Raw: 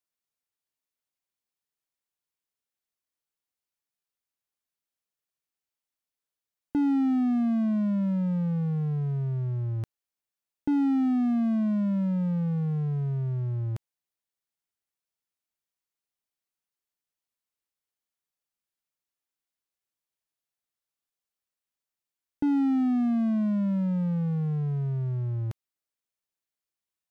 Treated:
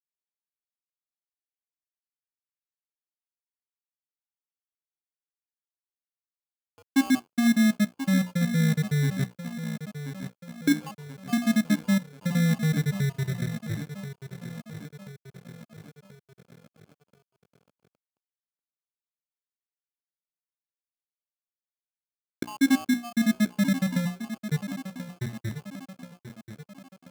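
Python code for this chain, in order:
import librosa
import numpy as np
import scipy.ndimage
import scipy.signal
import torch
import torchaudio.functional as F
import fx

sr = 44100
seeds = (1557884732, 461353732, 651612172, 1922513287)

y = fx.spec_dropout(x, sr, seeds[0], share_pct=73)
y = fx.hum_notches(y, sr, base_hz=60, count=5)
y = fx.echo_feedback(y, sr, ms=1033, feedback_pct=58, wet_db=-11)
y = np.sign(y) * np.maximum(np.abs(y) - 10.0 ** (-51.5 / 20.0), 0.0)
y = fx.notch(y, sr, hz=1100.0, q=5.5)
y = fx.sample_hold(y, sr, seeds[1], rate_hz=1900.0, jitter_pct=0)
y = scipy.signal.sosfilt(scipy.signal.butter(2, 120.0, 'highpass', fs=sr, output='sos'), y)
y = F.gain(torch.from_numpy(y), 7.0).numpy()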